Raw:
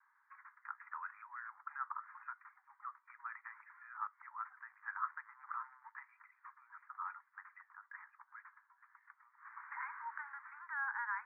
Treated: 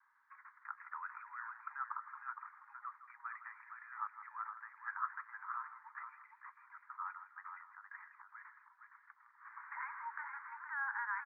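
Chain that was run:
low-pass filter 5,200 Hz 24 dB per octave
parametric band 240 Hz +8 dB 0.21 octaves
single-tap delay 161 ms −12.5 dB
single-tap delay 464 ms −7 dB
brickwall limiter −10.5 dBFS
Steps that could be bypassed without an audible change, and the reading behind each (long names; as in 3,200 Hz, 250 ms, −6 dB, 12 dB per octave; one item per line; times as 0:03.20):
low-pass filter 5,200 Hz: nothing at its input above 2,200 Hz
parametric band 240 Hz: nothing at its input below 760 Hz
brickwall limiter −10.5 dBFS: peak of its input −25.5 dBFS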